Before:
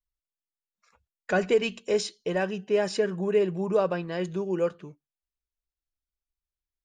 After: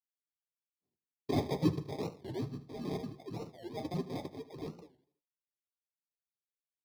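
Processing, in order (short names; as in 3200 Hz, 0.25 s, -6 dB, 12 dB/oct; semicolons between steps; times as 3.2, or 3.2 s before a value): median-filter separation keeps percussive; reverb removal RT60 1.3 s; gate -56 dBFS, range -31 dB; HPF 1400 Hz 12 dB/oct; bell 2000 Hz -4 dB 1.4 oct; 1.78–3.85 compressor 4:1, threshold -47 dBFS, peak gain reduction 13 dB; transient shaper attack -6 dB, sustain 0 dB; sample-and-hold 31×; soft clip -32.5 dBFS, distortion -19 dB; feedback echo 78 ms, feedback 45%, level -15 dB; reverb RT60 0.15 s, pre-delay 3 ms, DRR 2.5 dB; record warp 45 rpm, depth 250 cents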